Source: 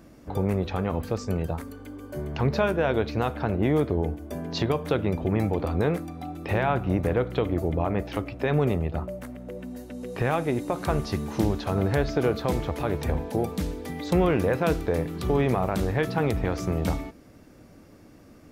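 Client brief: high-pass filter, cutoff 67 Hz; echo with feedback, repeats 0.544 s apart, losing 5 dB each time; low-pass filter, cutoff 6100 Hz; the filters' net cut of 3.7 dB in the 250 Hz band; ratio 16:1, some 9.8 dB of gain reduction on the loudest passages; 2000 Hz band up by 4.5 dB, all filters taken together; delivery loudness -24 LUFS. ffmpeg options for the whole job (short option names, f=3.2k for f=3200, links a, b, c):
-af "highpass=67,lowpass=6.1k,equalizer=f=250:t=o:g=-5.5,equalizer=f=2k:t=o:g=6,acompressor=threshold=-29dB:ratio=16,aecho=1:1:544|1088|1632|2176|2720|3264|3808:0.562|0.315|0.176|0.0988|0.0553|0.031|0.0173,volume=10dB"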